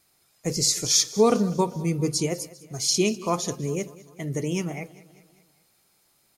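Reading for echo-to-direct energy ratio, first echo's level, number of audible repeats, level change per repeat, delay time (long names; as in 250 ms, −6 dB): −18.0 dB, −19.5 dB, 3, −5.5 dB, 198 ms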